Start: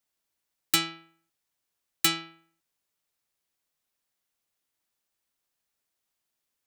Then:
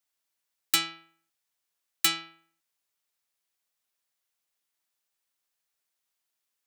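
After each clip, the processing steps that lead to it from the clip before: low shelf 490 Hz -9 dB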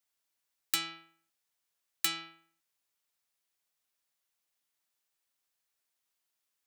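compressor 3:1, threshold -27 dBFS, peak gain reduction 7 dB; gain -1 dB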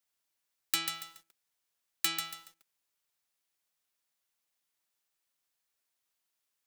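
lo-fi delay 0.141 s, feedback 35%, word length 9-bit, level -6 dB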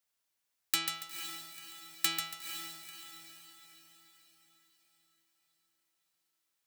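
diffused feedback echo 0.485 s, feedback 49%, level -8.5 dB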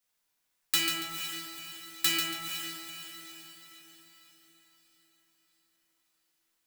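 reverb RT60 1.3 s, pre-delay 4 ms, DRR -4 dB

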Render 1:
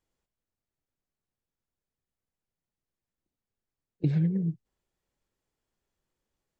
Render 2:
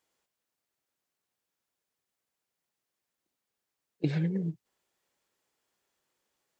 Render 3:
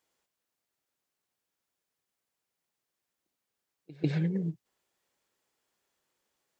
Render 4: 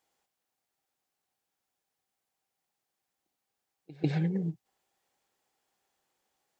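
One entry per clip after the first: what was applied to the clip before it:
HPF 610 Hz 6 dB/oct; gain +7.5 dB
reverse echo 0.146 s -21 dB
bell 780 Hz +10.5 dB 0.2 oct

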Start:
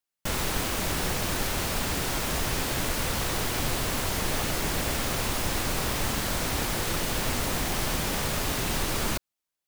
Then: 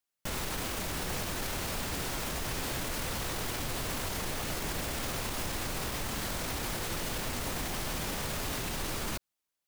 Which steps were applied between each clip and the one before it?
limiter -25.5 dBFS, peak gain reduction 11 dB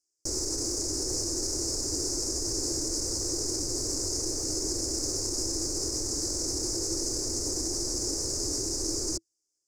EQ curve 110 Hz 0 dB, 190 Hz -15 dB, 330 Hz +12 dB, 690 Hz -8 dB, 2200 Hz -19 dB, 3300 Hz -30 dB, 5000 Hz +13 dB, 7100 Hz +14 dB, 16000 Hz -18 dB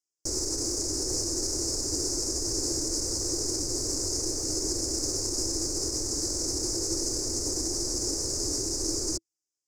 upward expander 1.5:1, over -49 dBFS; gain +2 dB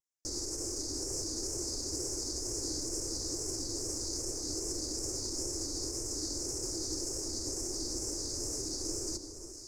echo with dull and thin repeats by turns 0.347 s, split 1300 Hz, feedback 70%, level -8 dB; wow and flutter 94 cents; gain -7.5 dB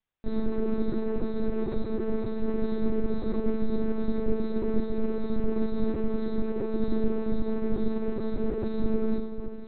shoebox room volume 32 m³, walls mixed, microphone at 0.6 m; monotone LPC vocoder at 8 kHz 220 Hz; gain +6.5 dB

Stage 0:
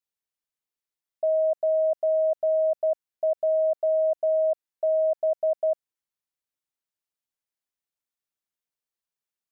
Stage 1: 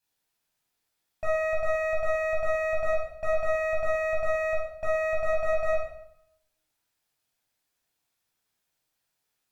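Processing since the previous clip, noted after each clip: limiter -28.5 dBFS, peak gain reduction 9.5 dB; one-sided clip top -48.5 dBFS, bottom -31 dBFS; reverb RT60 0.70 s, pre-delay 13 ms, DRR -4 dB; gain +4.5 dB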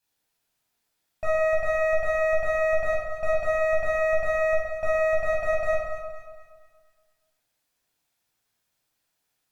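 echo with dull and thin repeats by turns 0.118 s, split 1400 Hz, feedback 63%, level -6 dB; gain +2 dB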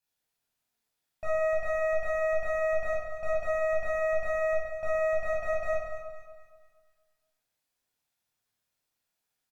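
doubler 27 ms -7 dB; gain -7 dB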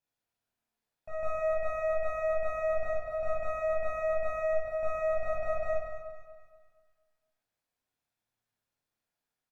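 high shelf 2600 Hz -9 dB; reverse echo 0.154 s -6 dB; gain -1 dB

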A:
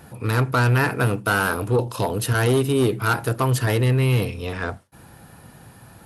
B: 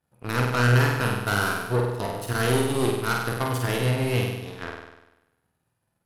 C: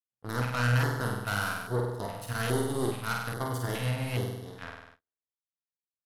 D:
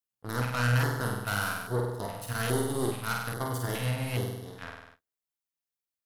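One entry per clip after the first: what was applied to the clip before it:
power-law curve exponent 2; on a send: flutter echo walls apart 8.4 m, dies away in 0.97 s
gate -45 dBFS, range -37 dB; LFO notch square 1.2 Hz 370–2500 Hz; gain -6 dB
high shelf 10000 Hz +6 dB

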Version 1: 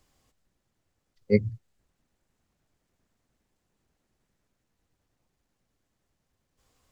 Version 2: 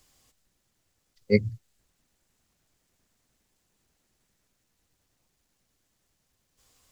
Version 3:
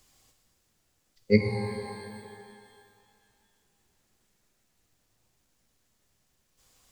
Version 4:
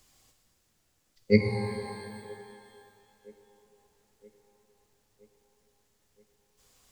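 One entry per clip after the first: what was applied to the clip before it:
high shelf 2500 Hz +10 dB
shimmer reverb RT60 2.2 s, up +12 st, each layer -8 dB, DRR 4 dB
band-limited delay 0.972 s, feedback 60%, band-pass 580 Hz, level -23 dB

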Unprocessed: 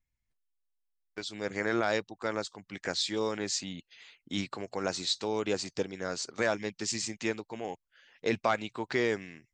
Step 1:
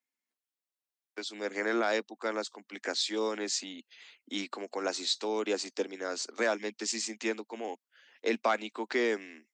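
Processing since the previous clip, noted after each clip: steep high-pass 220 Hz 72 dB/oct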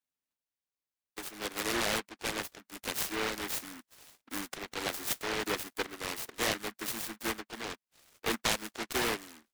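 noise-modulated delay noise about 1400 Hz, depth 0.38 ms; gain -2.5 dB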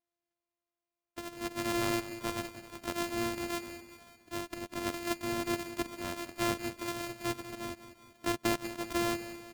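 sample sorter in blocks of 128 samples; on a send: feedback echo 0.192 s, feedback 55%, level -13 dB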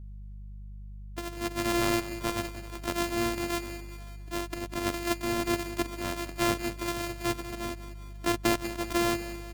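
buzz 50 Hz, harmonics 4, -47 dBFS -9 dB/oct; gain +4.5 dB

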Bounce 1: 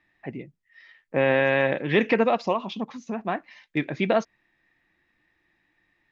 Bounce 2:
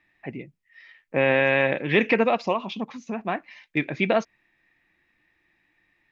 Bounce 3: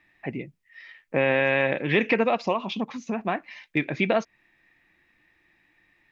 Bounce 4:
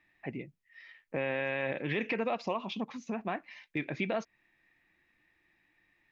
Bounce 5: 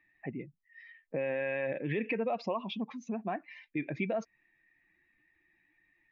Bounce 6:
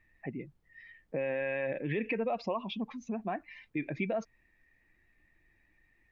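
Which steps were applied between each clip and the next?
bell 2400 Hz +5.5 dB 0.47 oct
compressor 1.5:1, threshold -30 dBFS, peak gain reduction 6 dB; gain +3.5 dB
limiter -14 dBFS, peak gain reduction 6 dB; gain -7 dB
spectral contrast raised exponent 1.5
added noise brown -71 dBFS

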